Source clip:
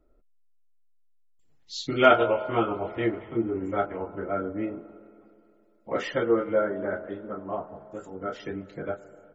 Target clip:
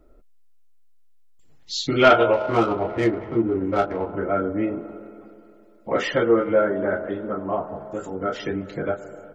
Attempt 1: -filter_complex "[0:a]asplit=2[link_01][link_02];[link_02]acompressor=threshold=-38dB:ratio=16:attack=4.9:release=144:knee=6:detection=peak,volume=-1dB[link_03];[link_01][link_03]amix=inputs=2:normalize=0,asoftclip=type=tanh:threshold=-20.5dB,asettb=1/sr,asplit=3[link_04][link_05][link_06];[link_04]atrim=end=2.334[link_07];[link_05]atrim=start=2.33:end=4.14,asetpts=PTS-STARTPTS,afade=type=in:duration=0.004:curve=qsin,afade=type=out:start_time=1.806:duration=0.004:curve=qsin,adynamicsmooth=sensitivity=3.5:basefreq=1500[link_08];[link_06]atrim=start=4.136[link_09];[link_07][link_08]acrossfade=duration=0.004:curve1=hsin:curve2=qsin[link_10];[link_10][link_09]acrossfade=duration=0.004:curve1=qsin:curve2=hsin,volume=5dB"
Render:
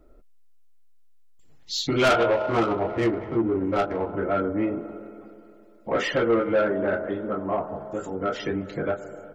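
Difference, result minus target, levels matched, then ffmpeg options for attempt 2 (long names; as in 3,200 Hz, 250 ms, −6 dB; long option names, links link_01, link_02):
soft clipping: distortion +10 dB
-filter_complex "[0:a]asplit=2[link_01][link_02];[link_02]acompressor=threshold=-38dB:ratio=16:attack=4.9:release=144:knee=6:detection=peak,volume=-1dB[link_03];[link_01][link_03]amix=inputs=2:normalize=0,asoftclip=type=tanh:threshold=-10dB,asettb=1/sr,asplit=3[link_04][link_05][link_06];[link_04]atrim=end=2.334[link_07];[link_05]atrim=start=2.33:end=4.14,asetpts=PTS-STARTPTS,afade=type=in:duration=0.004:curve=qsin,afade=type=out:start_time=1.806:duration=0.004:curve=qsin,adynamicsmooth=sensitivity=3.5:basefreq=1500[link_08];[link_06]atrim=start=4.136[link_09];[link_07][link_08]acrossfade=duration=0.004:curve1=hsin:curve2=qsin[link_10];[link_10][link_09]acrossfade=duration=0.004:curve1=qsin:curve2=hsin,volume=5dB"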